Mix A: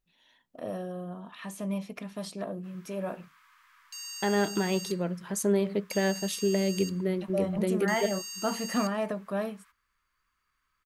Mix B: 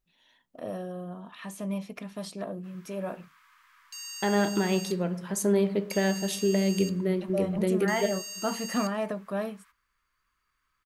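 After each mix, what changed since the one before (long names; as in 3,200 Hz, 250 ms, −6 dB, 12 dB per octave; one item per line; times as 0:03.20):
reverb: on, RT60 0.80 s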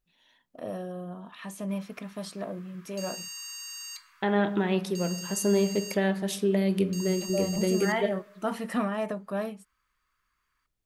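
background: entry −0.95 s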